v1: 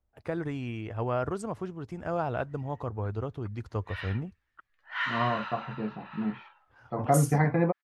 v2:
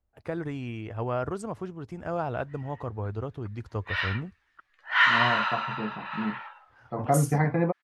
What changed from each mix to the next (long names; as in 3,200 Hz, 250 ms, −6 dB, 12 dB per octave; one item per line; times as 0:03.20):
background +11.0 dB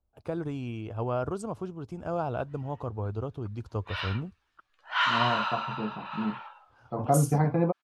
master: add parametric band 1,900 Hz −13.5 dB 0.44 octaves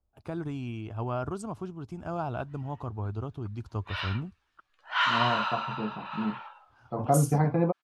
first voice: add parametric band 500 Hz −9.5 dB 0.44 octaves